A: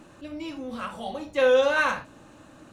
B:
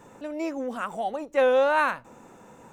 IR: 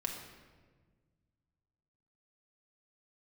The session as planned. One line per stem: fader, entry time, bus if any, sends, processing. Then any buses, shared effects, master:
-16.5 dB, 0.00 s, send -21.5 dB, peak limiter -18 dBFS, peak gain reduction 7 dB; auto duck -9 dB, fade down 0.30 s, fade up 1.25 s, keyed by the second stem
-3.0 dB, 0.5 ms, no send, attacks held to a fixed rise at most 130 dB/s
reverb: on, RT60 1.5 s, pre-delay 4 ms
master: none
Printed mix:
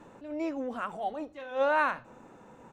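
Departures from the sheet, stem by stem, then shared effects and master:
stem A -16.5 dB -> -7.0 dB; master: extra low-pass 3.1 kHz 6 dB/octave

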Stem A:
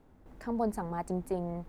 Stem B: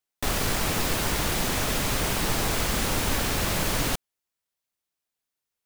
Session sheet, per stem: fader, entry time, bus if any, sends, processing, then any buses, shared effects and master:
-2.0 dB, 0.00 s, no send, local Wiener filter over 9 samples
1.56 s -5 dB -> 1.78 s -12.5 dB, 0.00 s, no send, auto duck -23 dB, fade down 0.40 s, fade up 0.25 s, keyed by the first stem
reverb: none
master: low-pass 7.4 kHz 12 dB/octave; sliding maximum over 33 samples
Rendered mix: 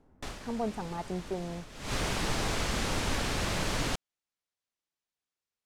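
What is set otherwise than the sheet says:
stem B -5.0 dB -> +3.0 dB; master: missing sliding maximum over 33 samples

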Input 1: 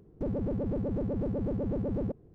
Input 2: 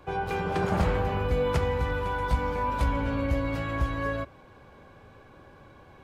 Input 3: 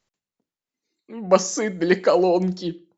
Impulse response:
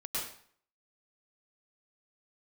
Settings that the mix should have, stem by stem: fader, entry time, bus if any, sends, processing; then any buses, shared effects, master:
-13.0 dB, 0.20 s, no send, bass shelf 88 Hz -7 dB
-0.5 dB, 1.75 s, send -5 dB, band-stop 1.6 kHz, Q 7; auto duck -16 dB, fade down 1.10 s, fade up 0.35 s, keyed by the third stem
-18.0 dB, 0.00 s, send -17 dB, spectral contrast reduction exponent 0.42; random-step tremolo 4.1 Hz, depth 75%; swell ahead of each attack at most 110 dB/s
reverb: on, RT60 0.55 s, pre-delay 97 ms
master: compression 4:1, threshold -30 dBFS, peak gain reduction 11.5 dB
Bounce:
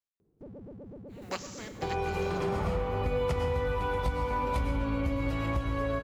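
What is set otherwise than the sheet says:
stem 2 -0.5 dB -> +9.0 dB; stem 3: missing swell ahead of each attack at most 110 dB/s

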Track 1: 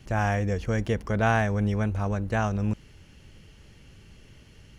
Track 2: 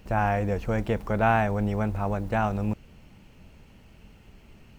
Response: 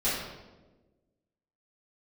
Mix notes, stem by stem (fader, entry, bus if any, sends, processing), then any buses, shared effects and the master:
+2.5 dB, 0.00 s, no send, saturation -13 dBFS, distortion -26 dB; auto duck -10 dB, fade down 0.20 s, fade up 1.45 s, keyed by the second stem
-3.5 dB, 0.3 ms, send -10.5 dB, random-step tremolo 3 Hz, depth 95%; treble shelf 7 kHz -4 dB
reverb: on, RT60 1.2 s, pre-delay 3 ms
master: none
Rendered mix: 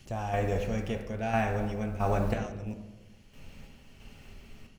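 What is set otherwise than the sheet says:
stem 1 +2.5 dB -> -5.0 dB; master: extra treble shelf 2.3 kHz +8.5 dB

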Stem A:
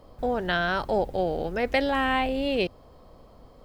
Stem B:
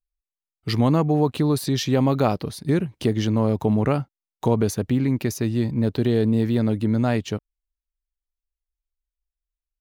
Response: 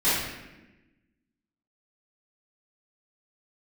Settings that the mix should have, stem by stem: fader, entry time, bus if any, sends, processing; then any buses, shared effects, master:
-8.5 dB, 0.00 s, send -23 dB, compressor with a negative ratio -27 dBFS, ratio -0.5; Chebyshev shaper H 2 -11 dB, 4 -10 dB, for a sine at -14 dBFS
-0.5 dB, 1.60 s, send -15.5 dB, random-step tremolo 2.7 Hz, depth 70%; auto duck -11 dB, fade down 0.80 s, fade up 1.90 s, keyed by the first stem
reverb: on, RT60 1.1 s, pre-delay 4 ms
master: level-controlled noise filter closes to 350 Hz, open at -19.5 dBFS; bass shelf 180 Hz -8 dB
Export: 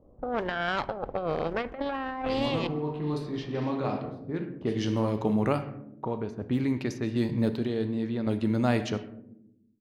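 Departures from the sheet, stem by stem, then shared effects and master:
stem A -8.5 dB -> -2.0 dB; reverb return -8.5 dB

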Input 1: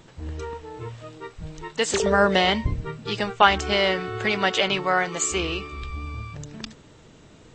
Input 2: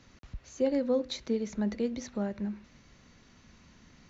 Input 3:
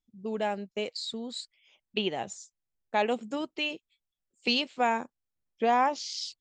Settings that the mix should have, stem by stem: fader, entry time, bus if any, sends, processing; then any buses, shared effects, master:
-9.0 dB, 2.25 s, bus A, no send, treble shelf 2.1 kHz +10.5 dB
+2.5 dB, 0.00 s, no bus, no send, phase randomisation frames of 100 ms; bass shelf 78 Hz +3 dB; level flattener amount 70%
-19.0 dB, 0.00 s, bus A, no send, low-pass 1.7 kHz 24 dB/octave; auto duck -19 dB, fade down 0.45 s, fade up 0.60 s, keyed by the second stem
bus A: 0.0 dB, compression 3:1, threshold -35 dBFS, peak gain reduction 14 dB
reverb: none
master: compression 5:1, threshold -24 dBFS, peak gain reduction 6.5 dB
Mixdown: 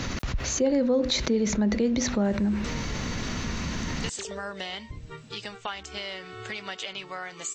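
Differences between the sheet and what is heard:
stem 2: missing phase randomisation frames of 100 ms; stem 3: muted; master: missing compression 5:1, threshold -24 dBFS, peak gain reduction 6.5 dB

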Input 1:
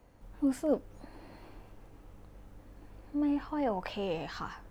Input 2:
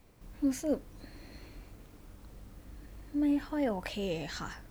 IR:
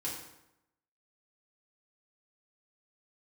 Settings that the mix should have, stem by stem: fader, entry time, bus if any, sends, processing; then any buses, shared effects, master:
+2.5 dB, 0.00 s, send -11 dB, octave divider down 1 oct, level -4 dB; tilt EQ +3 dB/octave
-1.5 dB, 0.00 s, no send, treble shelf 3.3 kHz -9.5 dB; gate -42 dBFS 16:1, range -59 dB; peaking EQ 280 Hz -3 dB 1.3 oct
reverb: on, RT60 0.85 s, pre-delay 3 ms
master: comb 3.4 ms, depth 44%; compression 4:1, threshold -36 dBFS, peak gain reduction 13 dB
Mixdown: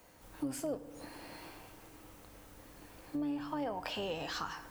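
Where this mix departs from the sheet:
stem 2: polarity flipped; master: missing comb 3.4 ms, depth 44%

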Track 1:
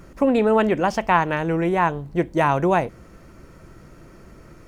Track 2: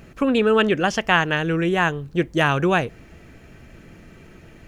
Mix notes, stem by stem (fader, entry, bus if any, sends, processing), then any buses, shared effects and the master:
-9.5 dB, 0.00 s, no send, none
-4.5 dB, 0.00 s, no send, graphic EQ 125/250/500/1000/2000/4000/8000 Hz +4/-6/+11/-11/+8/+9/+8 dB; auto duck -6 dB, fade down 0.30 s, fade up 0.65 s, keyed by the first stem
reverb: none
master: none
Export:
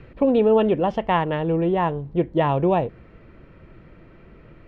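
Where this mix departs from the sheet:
stem 1 -9.5 dB -> -2.0 dB; master: extra distance through air 430 m

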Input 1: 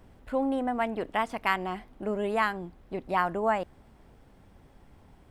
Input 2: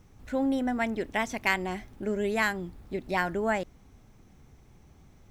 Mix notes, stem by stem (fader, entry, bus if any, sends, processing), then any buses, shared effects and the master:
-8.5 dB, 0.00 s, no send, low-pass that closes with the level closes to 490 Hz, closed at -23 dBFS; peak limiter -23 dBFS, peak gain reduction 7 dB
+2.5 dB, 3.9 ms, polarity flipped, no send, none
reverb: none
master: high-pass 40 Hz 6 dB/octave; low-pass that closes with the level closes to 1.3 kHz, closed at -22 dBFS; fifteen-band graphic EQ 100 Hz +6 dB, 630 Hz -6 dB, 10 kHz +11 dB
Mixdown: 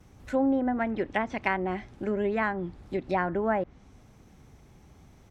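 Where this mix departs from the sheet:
stem 1: missing low-pass that closes with the level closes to 490 Hz, closed at -23 dBFS; master: missing fifteen-band graphic EQ 100 Hz +6 dB, 630 Hz -6 dB, 10 kHz +11 dB

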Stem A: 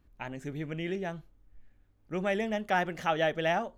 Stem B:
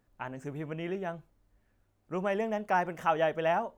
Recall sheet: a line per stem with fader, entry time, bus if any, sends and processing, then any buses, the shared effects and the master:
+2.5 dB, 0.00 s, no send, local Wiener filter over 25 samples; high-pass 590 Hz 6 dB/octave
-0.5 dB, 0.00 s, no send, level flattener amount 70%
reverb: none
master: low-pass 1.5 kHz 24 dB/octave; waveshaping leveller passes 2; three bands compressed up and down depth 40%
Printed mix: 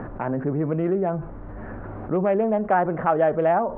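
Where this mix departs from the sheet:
stem A +2.5 dB -> +10.0 dB; master: missing waveshaping leveller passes 2

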